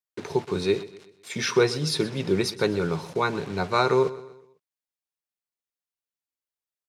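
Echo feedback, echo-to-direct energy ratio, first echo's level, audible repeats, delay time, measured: 44%, −16.0 dB, −17.0 dB, 3, 125 ms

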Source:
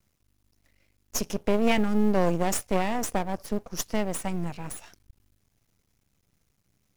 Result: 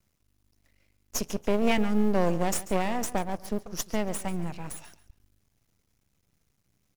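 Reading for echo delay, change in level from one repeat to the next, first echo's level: 140 ms, −12.5 dB, −16.0 dB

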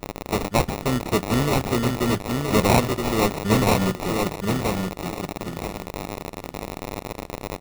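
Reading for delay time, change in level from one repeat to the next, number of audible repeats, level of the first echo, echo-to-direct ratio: 972 ms, −14.0 dB, 3, −4.0 dB, −4.0 dB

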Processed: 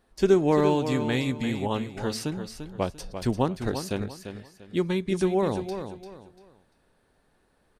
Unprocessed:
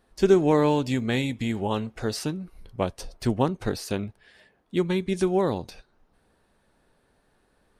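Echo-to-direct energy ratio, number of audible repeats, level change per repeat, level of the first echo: −8.5 dB, 3, −11.0 dB, −9.0 dB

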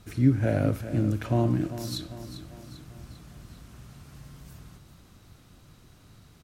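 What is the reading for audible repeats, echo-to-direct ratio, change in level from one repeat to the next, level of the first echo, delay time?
4, −11.0 dB, −6.0 dB, −12.0 dB, 396 ms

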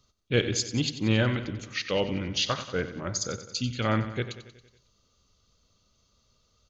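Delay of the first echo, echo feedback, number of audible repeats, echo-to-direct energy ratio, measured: 92 ms, 58%, 5, −10.5 dB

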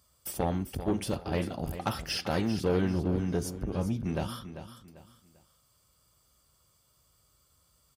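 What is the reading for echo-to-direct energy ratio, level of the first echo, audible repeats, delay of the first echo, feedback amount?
−11.0 dB, −11.5 dB, 3, 394 ms, 32%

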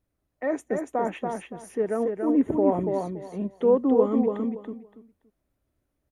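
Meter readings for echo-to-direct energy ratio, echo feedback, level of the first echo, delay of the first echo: −4.5 dB, 21%, −4.5 dB, 284 ms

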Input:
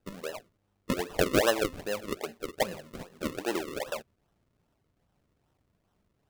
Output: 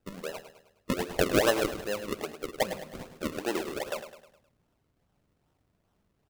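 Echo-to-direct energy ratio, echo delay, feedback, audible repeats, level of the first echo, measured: −10.0 dB, 104 ms, 47%, 4, −11.0 dB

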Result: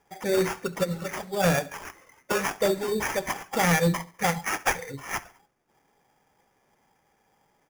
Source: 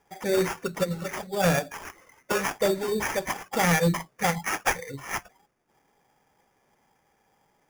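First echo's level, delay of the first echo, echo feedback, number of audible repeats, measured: −20.5 dB, 69 ms, 47%, 3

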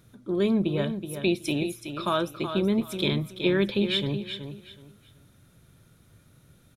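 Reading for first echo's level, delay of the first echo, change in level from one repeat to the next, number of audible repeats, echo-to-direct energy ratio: −9.0 dB, 374 ms, −12.5 dB, 3, −8.5 dB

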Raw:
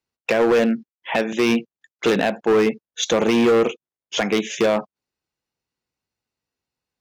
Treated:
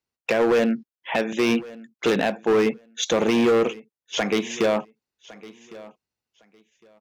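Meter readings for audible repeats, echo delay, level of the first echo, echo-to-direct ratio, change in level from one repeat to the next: 2, 1,108 ms, −20.0 dB, −20.0 dB, −14.5 dB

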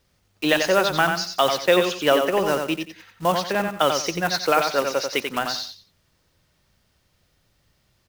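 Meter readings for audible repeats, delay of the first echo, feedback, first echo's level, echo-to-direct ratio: 3, 90 ms, 25%, −5.5 dB, −5.0 dB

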